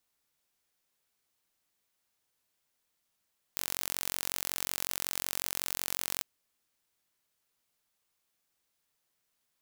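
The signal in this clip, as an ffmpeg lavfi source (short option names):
-f lavfi -i "aevalsrc='0.501*eq(mod(n,971),0)':d=2.66:s=44100"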